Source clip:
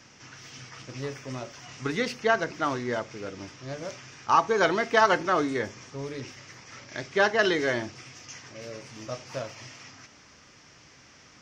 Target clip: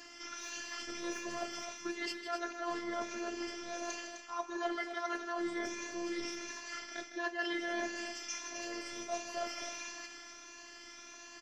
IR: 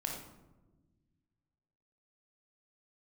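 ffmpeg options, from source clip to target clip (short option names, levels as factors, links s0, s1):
-filter_complex "[0:a]afftfilt=real='re*pow(10,9/40*sin(2*PI*(1.5*log(max(b,1)*sr/1024/100)/log(2)-(1.5)*(pts-256)/sr)))':imag='im*pow(10,9/40*sin(2*PI*(1.5*log(max(b,1)*sr/1024/100)/log(2)-(1.5)*(pts-256)/sr)))':win_size=1024:overlap=0.75,highpass=f=180:p=1,areverse,acompressor=threshold=0.0178:ratio=16,areverse,bandreject=f=50:t=h:w=6,bandreject=f=100:t=h:w=6,bandreject=f=150:t=h:w=6,bandreject=f=200:t=h:w=6,bandreject=f=250:t=h:w=6,afftfilt=real='hypot(re,im)*cos(PI*b)':imag='0':win_size=512:overlap=0.75,asplit=2[s0][s1];[s1]aecho=0:1:157.4|256.6:0.282|0.355[s2];[s0][s2]amix=inputs=2:normalize=0,volume=1.68"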